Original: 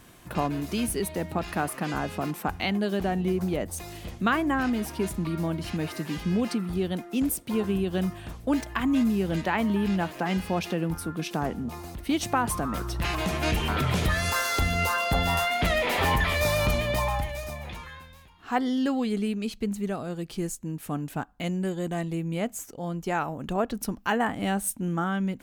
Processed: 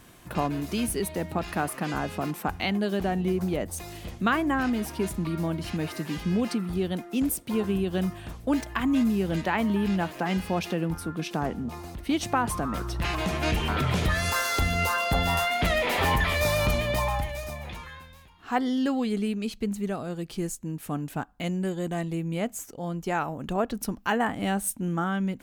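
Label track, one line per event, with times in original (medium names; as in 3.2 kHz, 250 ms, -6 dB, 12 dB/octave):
10.850000	14.150000	treble shelf 8.9 kHz -5.5 dB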